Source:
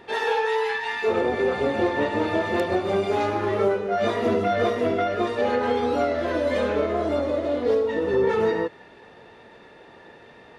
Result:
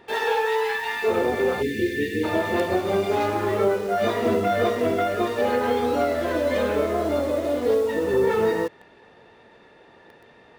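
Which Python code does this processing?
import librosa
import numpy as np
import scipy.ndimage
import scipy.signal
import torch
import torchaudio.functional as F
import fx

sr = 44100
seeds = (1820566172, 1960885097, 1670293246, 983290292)

p1 = fx.quant_dither(x, sr, seeds[0], bits=6, dither='none')
p2 = x + F.gain(torch.from_numpy(p1), -4.5).numpy()
p3 = fx.brickwall_bandstop(p2, sr, low_hz=500.0, high_hz=1600.0, at=(1.61, 2.23), fade=0.02)
y = F.gain(torch.from_numpy(p3), -3.5).numpy()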